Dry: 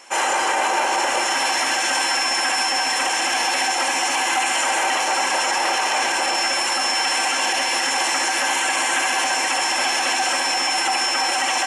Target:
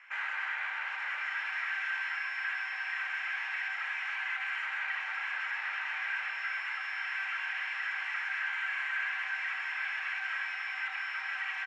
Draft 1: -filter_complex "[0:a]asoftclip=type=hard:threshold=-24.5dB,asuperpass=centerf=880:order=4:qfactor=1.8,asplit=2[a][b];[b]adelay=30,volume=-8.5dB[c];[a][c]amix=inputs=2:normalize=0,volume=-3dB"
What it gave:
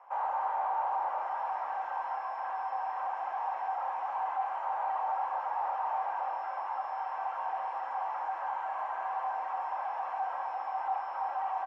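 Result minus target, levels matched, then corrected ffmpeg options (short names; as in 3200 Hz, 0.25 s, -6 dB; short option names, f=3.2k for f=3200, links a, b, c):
2000 Hz band -15.0 dB
-filter_complex "[0:a]asoftclip=type=hard:threshold=-24.5dB,asuperpass=centerf=1800:order=4:qfactor=1.8,asplit=2[a][b];[b]adelay=30,volume=-8.5dB[c];[a][c]amix=inputs=2:normalize=0,volume=-3dB"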